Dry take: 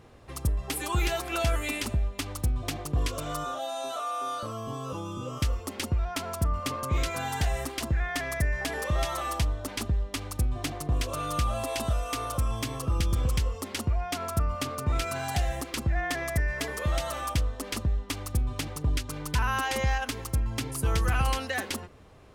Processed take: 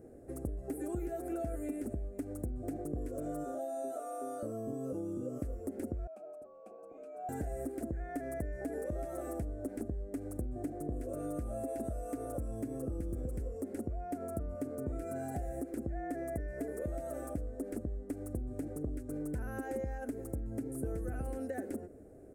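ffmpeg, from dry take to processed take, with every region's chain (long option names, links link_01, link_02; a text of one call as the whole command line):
ffmpeg -i in.wav -filter_complex "[0:a]asettb=1/sr,asplit=3[link_01][link_02][link_03];[link_01]atrim=end=6.074[link_04];[link_02]atrim=start=6.07:end=7.29,asetpts=PTS-STARTPTS,afade=type=in:duration=0.004:curve=qsin,afade=type=out:start_time=1.216:duration=0.004:curve=qsin,lowshelf=frequency=150:gain=-8,afreqshift=-65,asplit=3[link_05][link_06][link_07];[link_05]bandpass=frequency=730:width_type=q:width=8,volume=0dB[link_08];[link_06]bandpass=frequency=1090:width_type=q:width=8,volume=-6dB[link_09];[link_07]bandpass=frequency=2440:width_type=q:width=8,volume=-9dB[link_10];[link_08][link_09][link_10]amix=inputs=3:normalize=0[link_11];[link_03]atrim=start=7.286[link_12];[link_04][link_11]acrossfade=duration=0.004:curve1=hsin:curve2=qsin[link_13];[link_13][link_12]acrossfade=duration=0.004:curve1=qsin:curve2=hsin,acrossover=split=3200[link_14][link_15];[link_15]acompressor=threshold=-42dB:ratio=4:attack=1:release=60[link_16];[link_14][link_16]amix=inputs=2:normalize=0,firequalizer=gain_entry='entry(150,0);entry(280,12);entry(690,4);entry(1000,-20);entry(1500,-6);entry(3100,-26);entry(8300,3)':delay=0.05:min_phase=1,acompressor=threshold=-30dB:ratio=4,volume=-5.5dB" out.wav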